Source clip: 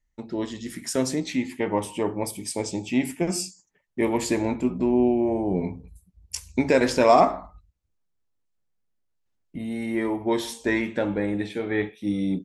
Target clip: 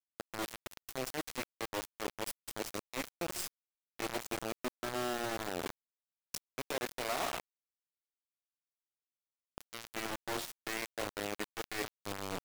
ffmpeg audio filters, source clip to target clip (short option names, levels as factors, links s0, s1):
-af "aeval=exprs='if(lt(val(0),0),0.251*val(0),val(0))':c=same,highpass=f=310:w=0.5412,highpass=f=310:w=1.3066,areverse,acompressor=threshold=0.01:ratio=4,areverse,acrusher=bits=5:mix=0:aa=0.000001,volume=1.19"